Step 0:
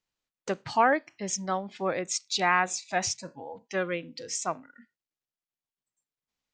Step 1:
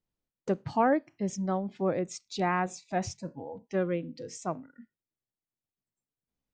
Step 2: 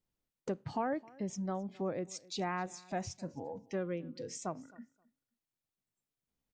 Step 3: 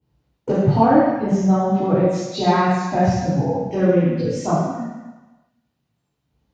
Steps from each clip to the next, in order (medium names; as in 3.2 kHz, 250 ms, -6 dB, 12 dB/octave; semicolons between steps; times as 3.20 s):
tilt shelf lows +9.5 dB, about 730 Hz; trim -2.5 dB
compression 2:1, threshold -39 dBFS, peak gain reduction 10.5 dB; feedback delay 263 ms, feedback 16%, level -23 dB
reverberation RT60 1.1 s, pre-delay 3 ms, DRR -11 dB; trim -5 dB